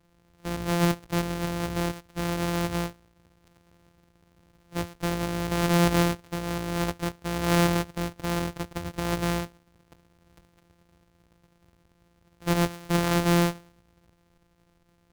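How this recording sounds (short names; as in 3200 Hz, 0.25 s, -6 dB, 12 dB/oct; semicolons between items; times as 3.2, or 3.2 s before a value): a buzz of ramps at a fixed pitch in blocks of 256 samples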